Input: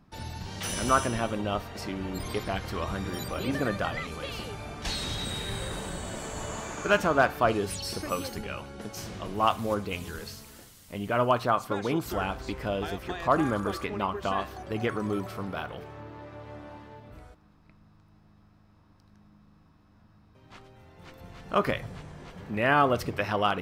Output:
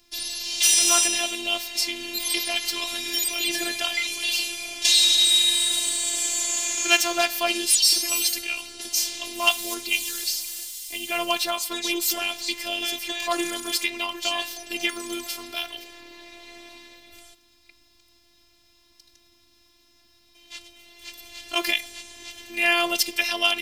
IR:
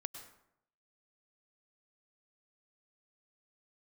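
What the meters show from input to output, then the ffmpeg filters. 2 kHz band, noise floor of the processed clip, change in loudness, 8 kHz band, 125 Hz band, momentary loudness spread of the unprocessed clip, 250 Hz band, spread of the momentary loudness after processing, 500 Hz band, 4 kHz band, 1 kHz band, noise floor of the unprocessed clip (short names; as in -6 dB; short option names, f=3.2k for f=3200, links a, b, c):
+6.5 dB, -60 dBFS, +7.5 dB, +19.0 dB, under -20 dB, 19 LU, -3.0 dB, 15 LU, -3.5 dB, +17.0 dB, -3.0 dB, -59 dBFS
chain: -filter_complex "[0:a]acrossover=split=150[a][b];[a]acompressor=threshold=-48dB:ratio=16[c];[c][b]amix=inputs=2:normalize=0,afftfilt=real='hypot(re,im)*cos(PI*b)':imag='0':win_size=512:overlap=0.75,aexciter=amount=9.6:drive=4.9:freq=2.1k"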